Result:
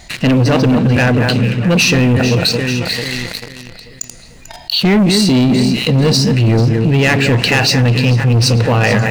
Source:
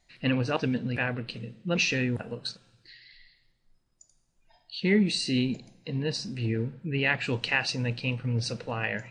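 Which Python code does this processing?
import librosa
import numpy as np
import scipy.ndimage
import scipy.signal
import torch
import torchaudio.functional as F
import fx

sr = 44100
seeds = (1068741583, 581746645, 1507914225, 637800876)

p1 = fx.highpass(x, sr, hz=51.0, slope=6)
p2 = fx.low_shelf(p1, sr, hz=120.0, db=6.0)
p3 = fx.echo_alternate(p2, sr, ms=221, hz=2300.0, feedback_pct=59, wet_db=-9.0)
p4 = fx.rider(p3, sr, range_db=3, speed_s=0.5)
p5 = p3 + (p4 * librosa.db_to_amplitude(1.5))
p6 = fx.dynamic_eq(p5, sr, hz=2100.0, q=0.76, threshold_db=-33.0, ratio=4.0, max_db=-5)
p7 = fx.leveller(p6, sr, passes=3)
y = fx.env_flatten(p7, sr, amount_pct=50)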